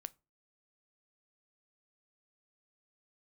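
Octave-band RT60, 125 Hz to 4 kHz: 0.40, 0.35, 0.35, 0.30, 0.20, 0.20 seconds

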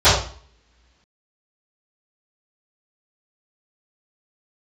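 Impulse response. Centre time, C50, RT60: 45 ms, 2.5 dB, 0.45 s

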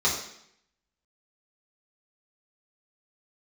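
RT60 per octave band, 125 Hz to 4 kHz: 0.75, 0.75, 0.70, 0.70, 0.75, 0.70 seconds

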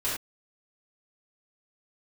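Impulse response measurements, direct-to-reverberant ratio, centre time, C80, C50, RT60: −10.0 dB, 48 ms, 5.5 dB, 1.0 dB, non-exponential decay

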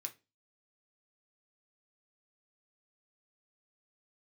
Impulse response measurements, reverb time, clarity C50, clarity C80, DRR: non-exponential decay, 17.5 dB, 25.5 dB, 4.0 dB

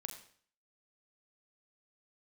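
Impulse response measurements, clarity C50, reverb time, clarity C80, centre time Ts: 9.0 dB, 0.50 s, 10.5 dB, 19 ms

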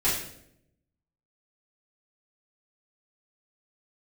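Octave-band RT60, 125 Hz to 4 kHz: 1.2, 1.0, 0.85, 0.60, 0.60, 0.55 seconds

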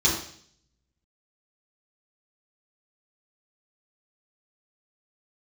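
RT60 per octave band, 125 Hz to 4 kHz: 0.95, 0.65, 0.60, 0.55, 0.60, 0.70 seconds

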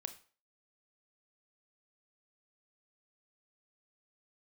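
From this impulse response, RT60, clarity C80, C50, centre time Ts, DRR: 0.40 s, 17.5 dB, 13.0 dB, 7 ms, 9.0 dB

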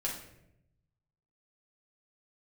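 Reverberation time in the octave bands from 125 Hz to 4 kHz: 1.5, 1.1, 0.95, 0.65, 0.70, 0.55 seconds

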